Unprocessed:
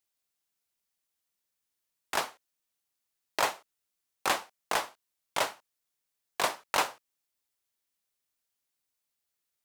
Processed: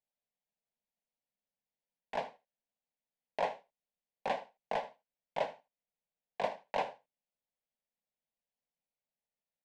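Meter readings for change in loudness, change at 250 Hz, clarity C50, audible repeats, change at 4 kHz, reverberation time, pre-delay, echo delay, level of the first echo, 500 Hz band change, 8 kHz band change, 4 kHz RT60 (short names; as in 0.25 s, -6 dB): -7.0 dB, -5.5 dB, none, 1, -14.5 dB, none, none, 77 ms, -17.0 dB, -0.5 dB, under -25 dB, none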